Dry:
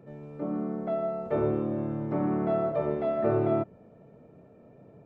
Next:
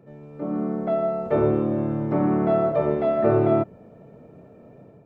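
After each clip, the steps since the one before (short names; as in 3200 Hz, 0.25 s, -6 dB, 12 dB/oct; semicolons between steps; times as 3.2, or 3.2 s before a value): AGC gain up to 6.5 dB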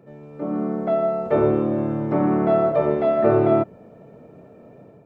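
low shelf 160 Hz -5.5 dB; gain +3 dB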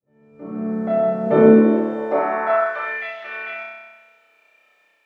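opening faded in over 1.26 s; flutter echo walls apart 5.4 m, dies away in 1.3 s; high-pass sweep 70 Hz -> 2500 Hz, 0.71–3.15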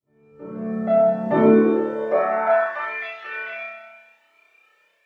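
cascading flanger rising 0.69 Hz; gain +3.5 dB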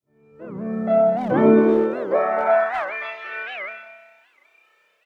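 speakerphone echo 0.25 s, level -9 dB; record warp 78 rpm, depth 250 cents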